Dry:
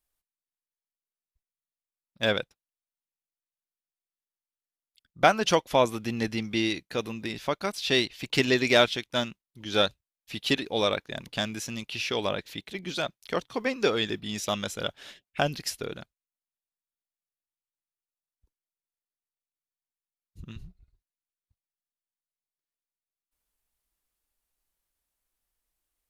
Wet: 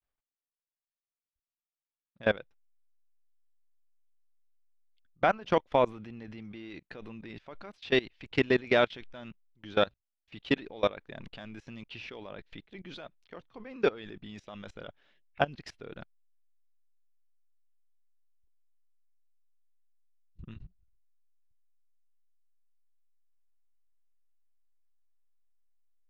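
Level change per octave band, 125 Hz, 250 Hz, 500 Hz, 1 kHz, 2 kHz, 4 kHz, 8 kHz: -6.0 dB, -5.5 dB, -3.5 dB, -4.5 dB, -5.5 dB, -11.5 dB, under -20 dB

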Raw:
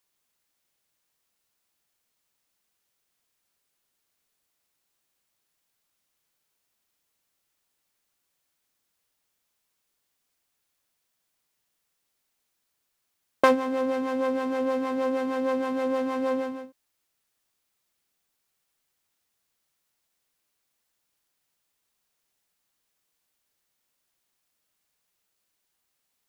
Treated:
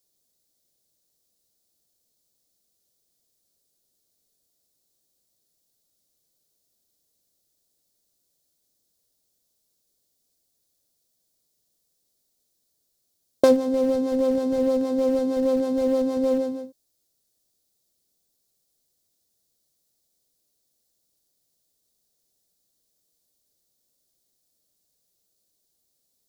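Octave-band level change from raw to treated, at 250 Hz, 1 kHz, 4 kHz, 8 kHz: +5.5 dB, -6.5 dB, +1.0 dB, n/a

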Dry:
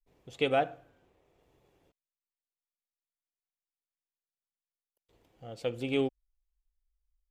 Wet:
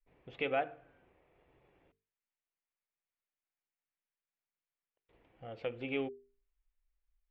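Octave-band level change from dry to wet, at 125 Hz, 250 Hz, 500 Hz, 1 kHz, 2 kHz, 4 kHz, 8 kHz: -9.0 dB, -7.5 dB, -6.5 dB, -5.5 dB, -2.5 dB, -8.5 dB, under -15 dB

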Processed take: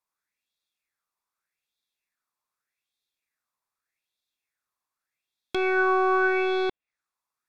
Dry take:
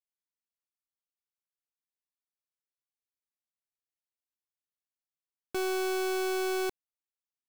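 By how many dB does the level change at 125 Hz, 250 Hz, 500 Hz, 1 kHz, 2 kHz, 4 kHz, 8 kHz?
n/a, +6.0 dB, +6.0 dB, +10.5 dB, +11.5 dB, +0.5 dB, under -15 dB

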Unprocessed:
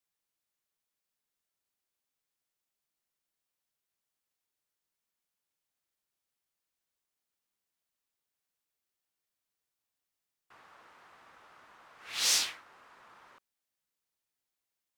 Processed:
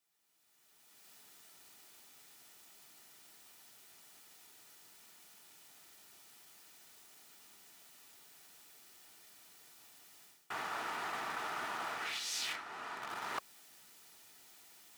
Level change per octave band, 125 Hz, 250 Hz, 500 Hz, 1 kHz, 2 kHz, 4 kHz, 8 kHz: n/a, +8.5 dB, +8.0 dB, +11.0 dB, +2.5 dB, -7.5 dB, -10.5 dB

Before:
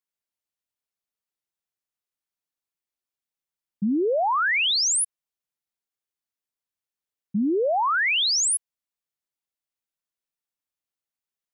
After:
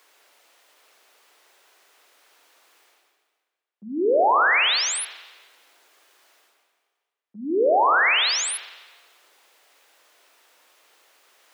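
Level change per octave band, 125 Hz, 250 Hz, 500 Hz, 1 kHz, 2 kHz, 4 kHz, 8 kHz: under -15 dB, -4.5 dB, +4.0 dB, +4.5 dB, +3.5 dB, +0.5 dB, -4.5 dB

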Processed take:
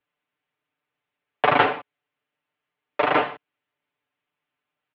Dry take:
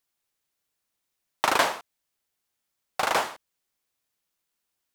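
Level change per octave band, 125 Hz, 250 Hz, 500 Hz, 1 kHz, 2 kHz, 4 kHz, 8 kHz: +11.5 dB, +9.0 dB, +7.0 dB, +4.5 dB, +3.5 dB, -1.5 dB, under -35 dB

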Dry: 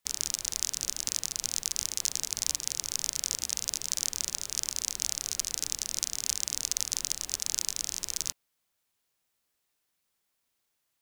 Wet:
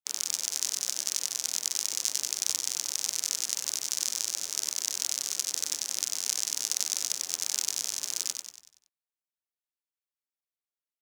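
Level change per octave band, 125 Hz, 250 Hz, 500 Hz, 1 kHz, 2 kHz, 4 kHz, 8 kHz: under -10 dB, -3.5 dB, +0.5 dB, +1.5 dB, +1.5 dB, +1.5 dB, +1.5 dB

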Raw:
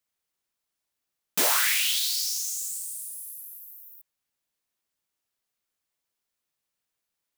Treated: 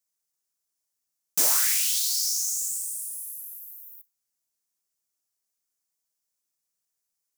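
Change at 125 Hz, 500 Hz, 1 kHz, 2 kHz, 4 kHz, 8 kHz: n/a, -6.5 dB, -6.5 dB, -7.5 dB, -2.5 dB, +3.5 dB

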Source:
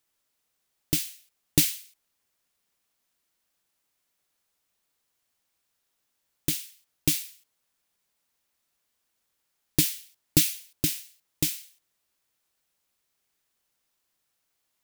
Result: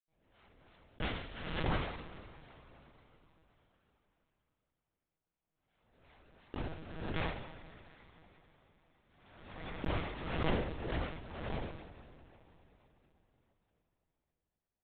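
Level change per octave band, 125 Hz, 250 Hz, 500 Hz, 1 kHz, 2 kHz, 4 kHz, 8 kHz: -5.5 dB, -8.0 dB, +2.5 dB, +13.5 dB, -1.5 dB, -14.0 dB, under -40 dB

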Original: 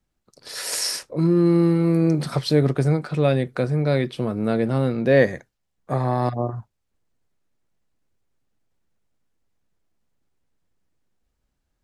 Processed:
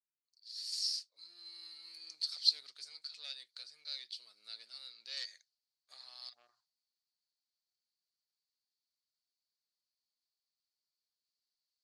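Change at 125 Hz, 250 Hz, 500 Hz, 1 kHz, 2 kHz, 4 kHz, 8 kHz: under -40 dB, under -40 dB, under -40 dB, -38.5 dB, -26.0 dB, -3.0 dB, n/a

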